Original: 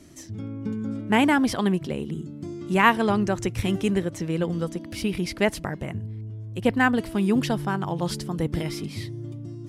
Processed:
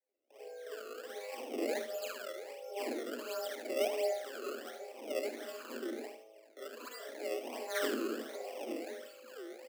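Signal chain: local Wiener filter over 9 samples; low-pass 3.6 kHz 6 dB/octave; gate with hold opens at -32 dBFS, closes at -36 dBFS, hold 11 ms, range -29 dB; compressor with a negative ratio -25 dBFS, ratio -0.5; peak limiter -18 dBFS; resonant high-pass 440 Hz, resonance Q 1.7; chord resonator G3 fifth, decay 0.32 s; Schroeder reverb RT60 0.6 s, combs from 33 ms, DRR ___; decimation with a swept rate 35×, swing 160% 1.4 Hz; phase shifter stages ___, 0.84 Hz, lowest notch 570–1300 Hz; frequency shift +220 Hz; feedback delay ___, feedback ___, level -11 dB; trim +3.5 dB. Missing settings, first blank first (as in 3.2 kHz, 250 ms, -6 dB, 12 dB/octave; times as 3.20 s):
-6 dB, 12, 75 ms, 30%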